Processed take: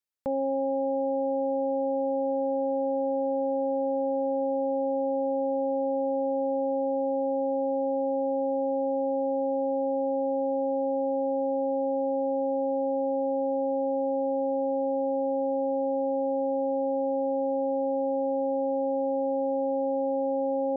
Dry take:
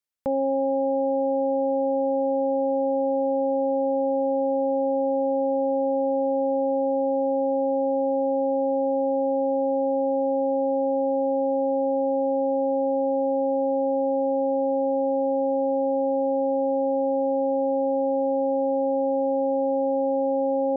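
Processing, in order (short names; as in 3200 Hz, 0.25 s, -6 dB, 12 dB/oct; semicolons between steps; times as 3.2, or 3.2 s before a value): 2.29–4.44 fast leveller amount 50%; gain -4 dB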